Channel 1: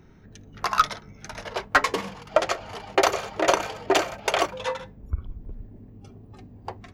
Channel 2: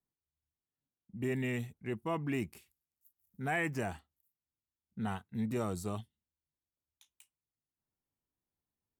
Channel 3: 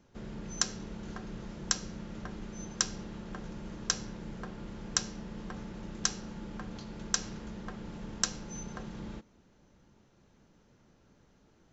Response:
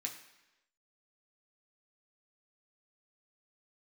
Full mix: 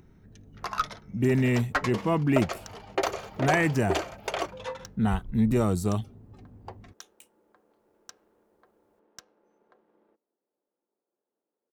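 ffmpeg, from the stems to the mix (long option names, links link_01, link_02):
-filter_complex "[0:a]acompressor=mode=upward:threshold=-49dB:ratio=2.5,volume=-9dB[link_01];[1:a]acontrast=33,volume=2dB[link_02];[2:a]highpass=frequency=380:width=0.5412,highpass=frequency=380:width=1.3066,adynamicsmooth=sensitivity=5:basefreq=990,adelay=950,volume=-16.5dB[link_03];[link_01][link_02][link_03]amix=inputs=3:normalize=0,lowshelf=frequency=390:gain=6"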